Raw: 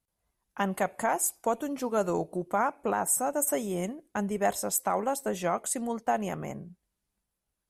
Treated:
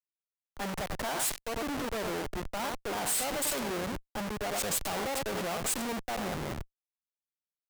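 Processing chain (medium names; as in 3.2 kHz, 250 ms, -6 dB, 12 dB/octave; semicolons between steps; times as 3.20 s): Chebyshev shaper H 2 -8 dB, 3 -23 dB, 4 -28 dB, 6 -19 dB, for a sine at -13.5 dBFS; on a send: delay 94 ms -11.5 dB; on the sum: Schmitt trigger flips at -38 dBFS; bass shelf 330 Hz -5.5 dB; three bands expanded up and down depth 70%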